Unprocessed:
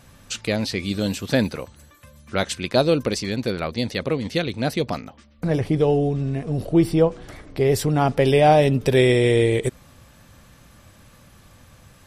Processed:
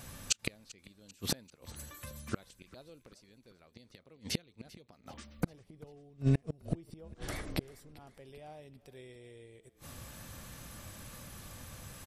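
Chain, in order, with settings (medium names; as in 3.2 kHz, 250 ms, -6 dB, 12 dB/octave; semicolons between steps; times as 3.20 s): inverted gate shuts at -17 dBFS, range -36 dB; treble shelf 6.8 kHz +9 dB; frequency-shifting echo 392 ms, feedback 54%, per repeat -32 Hz, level -21 dB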